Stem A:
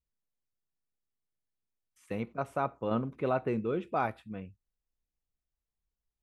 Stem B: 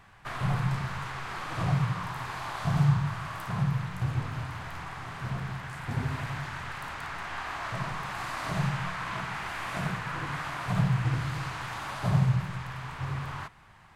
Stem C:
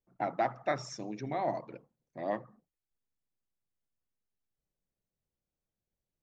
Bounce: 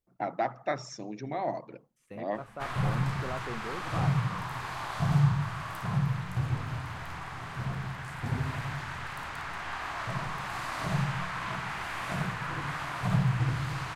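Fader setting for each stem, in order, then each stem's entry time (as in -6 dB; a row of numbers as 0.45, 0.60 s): -9.0, -0.5, +0.5 dB; 0.00, 2.35, 0.00 s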